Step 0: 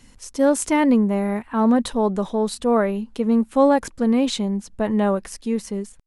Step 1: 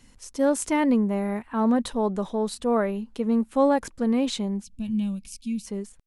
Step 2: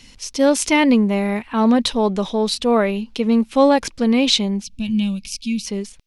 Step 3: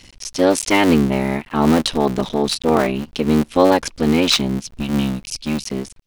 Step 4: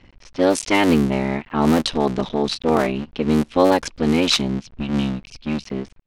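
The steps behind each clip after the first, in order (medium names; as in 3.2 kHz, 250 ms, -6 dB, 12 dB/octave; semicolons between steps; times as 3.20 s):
time-frequency box 4.64–5.66 s, 270–2200 Hz -24 dB; trim -4.5 dB
high-order bell 3.6 kHz +10 dB; trim +6.5 dB
cycle switcher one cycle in 3, muted; trim +2 dB
level-controlled noise filter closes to 1.7 kHz, open at -9.5 dBFS; trim -2 dB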